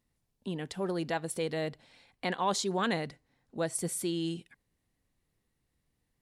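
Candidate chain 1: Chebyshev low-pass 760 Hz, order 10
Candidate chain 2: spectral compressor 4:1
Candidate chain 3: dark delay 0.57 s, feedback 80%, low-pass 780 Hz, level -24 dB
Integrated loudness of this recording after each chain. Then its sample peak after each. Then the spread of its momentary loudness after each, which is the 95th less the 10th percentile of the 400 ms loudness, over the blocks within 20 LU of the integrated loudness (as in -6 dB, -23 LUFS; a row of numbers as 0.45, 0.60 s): -36.5, -39.0, -34.0 LUFS; -22.5, -17.5, -17.5 dBFS; 8, 11, 13 LU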